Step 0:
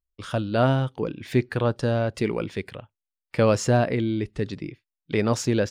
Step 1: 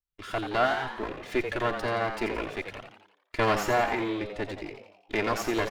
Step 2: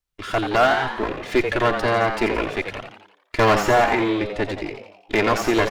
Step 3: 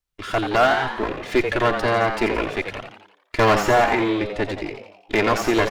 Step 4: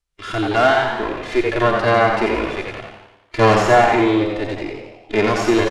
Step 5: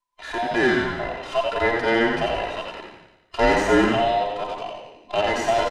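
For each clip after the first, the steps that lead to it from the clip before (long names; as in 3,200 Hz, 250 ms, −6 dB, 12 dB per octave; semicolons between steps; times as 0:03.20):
lower of the sound and its delayed copy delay 2.9 ms; parametric band 1,800 Hz +7 dB 2 octaves; on a send: echo with shifted repeats 86 ms, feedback 52%, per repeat +96 Hz, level −8 dB; on the sum: level −6.5 dB
de-essing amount 75%; high-shelf EQ 11,000 Hz −5.5 dB; hard clipping −18.5 dBFS, distortion −18 dB; level +9 dB
no processing that can be heard
low-pass filter 11,000 Hz 24 dB per octave; harmonic and percussive parts rebalanced percussive −15 dB; on a send: repeating echo 100 ms, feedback 47%, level −9 dB; on the sum: level +6 dB
frequency inversion band by band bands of 1,000 Hz; level −5 dB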